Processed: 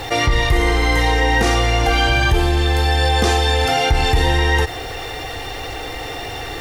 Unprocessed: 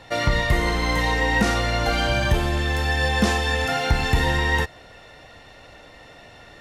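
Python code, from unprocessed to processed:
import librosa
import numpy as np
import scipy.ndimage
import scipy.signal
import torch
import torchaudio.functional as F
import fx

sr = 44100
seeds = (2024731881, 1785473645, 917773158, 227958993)

y = fx.quant_dither(x, sr, seeds[0], bits=10, dither='none')
y = y + 0.69 * np.pad(y, (int(2.5 * sr / 1000.0), 0))[:len(y)]
y = fx.env_flatten(y, sr, amount_pct=50)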